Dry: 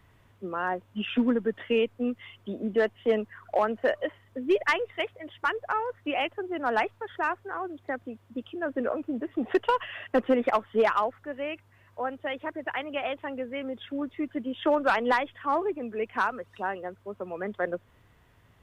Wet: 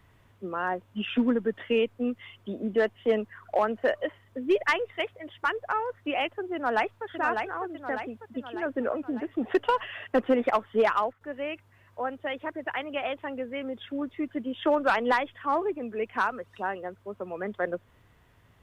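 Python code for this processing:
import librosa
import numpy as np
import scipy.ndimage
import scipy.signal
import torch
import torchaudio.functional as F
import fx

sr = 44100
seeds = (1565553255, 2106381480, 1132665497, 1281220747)

y = fx.echo_throw(x, sr, start_s=6.54, length_s=0.51, ms=600, feedback_pct=55, wet_db=-5.0)
y = fx.edit(y, sr, fx.fade_down_up(start_s=10.88, length_s=0.58, db=-12.0, fade_s=0.25, curve='log'), tone=tone)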